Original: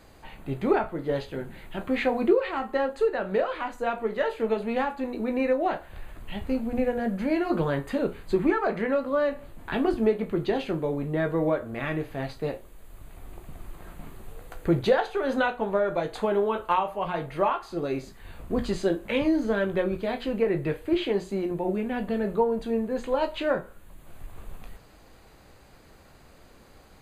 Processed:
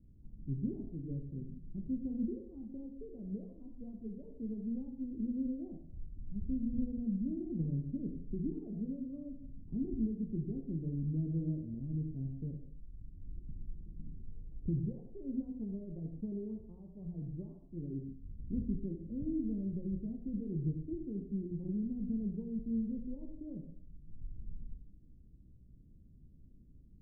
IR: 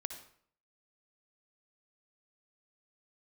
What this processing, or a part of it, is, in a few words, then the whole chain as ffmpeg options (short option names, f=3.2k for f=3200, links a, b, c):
club heard from the street: -filter_complex "[0:a]alimiter=limit=-16.5dB:level=0:latency=1:release=131,lowpass=f=240:w=0.5412,lowpass=f=240:w=1.3066[a];[1:a]atrim=start_sample=2205[b];[a][b]afir=irnorm=-1:irlink=0,volume=-1.5dB"